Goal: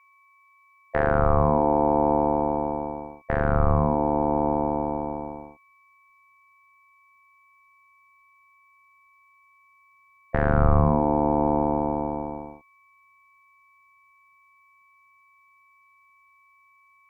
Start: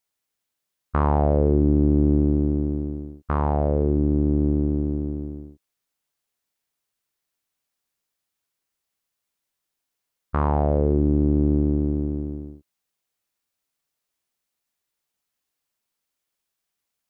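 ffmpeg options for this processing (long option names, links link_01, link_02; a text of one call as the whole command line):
ffmpeg -i in.wav -af "aeval=exprs='val(0)+0.002*sin(2*PI*1700*n/s)':channel_layout=same,aeval=exprs='val(0)*sin(2*PI*600*n/s)':channel_layout=same,asubboost=boost=5:cutoff=180,volume=1dB" out.wav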